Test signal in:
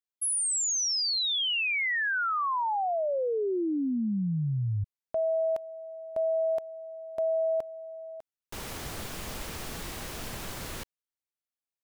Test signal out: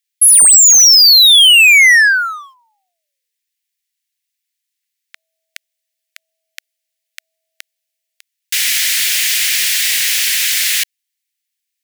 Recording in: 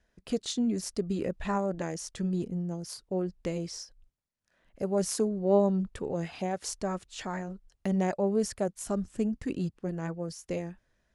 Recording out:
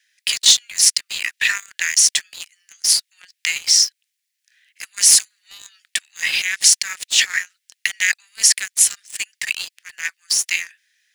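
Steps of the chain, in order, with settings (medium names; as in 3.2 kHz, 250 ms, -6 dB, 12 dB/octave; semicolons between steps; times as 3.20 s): steep high-pass 1.8 kHz 48 dB/octave; waveshaping leveller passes 2; loudness maximiser +22 dB; trim -1 dB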